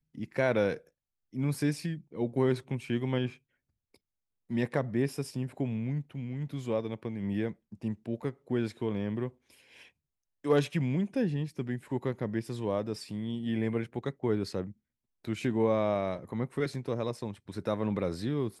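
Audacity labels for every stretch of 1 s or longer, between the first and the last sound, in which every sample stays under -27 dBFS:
3.260000	4.530000	silence
9.260000	10.460000	silence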